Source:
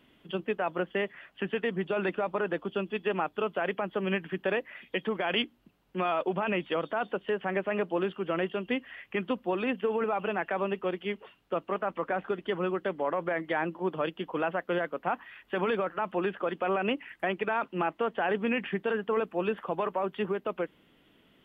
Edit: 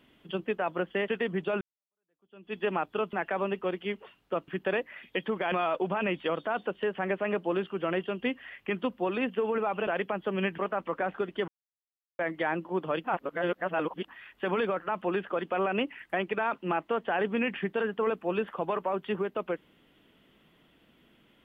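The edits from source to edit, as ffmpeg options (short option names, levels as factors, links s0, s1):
-filter_complex "[0:a]asplit=12[s0][s1][s2][s3][s4][s5][s6][s7][s8][s9][s10][s11];[s0]atrim=end=1.082[s12];[s1]atrim=start=1.508:end=2.04,asetpts=PTS-STARTPTS,afade=t=out:st=0.528:d=0.004:c=hsin[s13];[s2]atrim=start=2.04:end=3.562,asetpts=PTS-STARTPTS,afade=t=in:d=0.95:c=exp[s14];[s3]atrim=start=10.328:end=11.682[s15];[s4]atrim=start=4.268:end=5.312[s16];[s5]atrim=start=5.978:end=10.332[s17];[s6]atrim=start=3.558:end=4.272[s18];[s7]atrim=start=11.678:end=12.58,asetpts=PTS-STARTPTS,afade=t=out:st=0.898:d=0.004:c=hsin[s19];[s8]atrim=start=12.58:end=13.29,asetpts=PTS-STARTPTS,volume=0[s20];[s9]atrim=start=13.29:end=14.142,asetpts=PTS-STARTPTS,afade=t=in:d=0.004:c=hsin[s21];[s10]atrim=start=14.138:end=15.182,asetpts=PTS-STARTPTS,areverse[s22];[s11]atrim=start=15.178[s23];[s13][s14]concat=n=2:v=0:a=1[s24];[s12][s24]acrossfade=d=0.004:c1=hsin:c2=hsin[s25];[s25][s15]acrossfade=d=0.004:c1=hsin:c2=hsin[s26];[s26][s16]acrossfade=d=0.004:c1=hsin:c2=hsin[s27];[s27][s17]acrossfade=d=0.004:c1=hsin:c2=hsin[s28];[s28][s18]acrossfade=d=0.004:c1=hsin:c2=hsin[s29];[s19][s20][s21]concat=n=3:v=0:a=1[s30];[s29][s30]acrossfade=d=0.004:c1=hsin:c2=hsin[s31];[s31][s22]acrossfade=d=0.004:c1=hsin:c2=hsin[s32];[s32][s23]acrossfade=d=0.004:c1=hsin:c2=hsin"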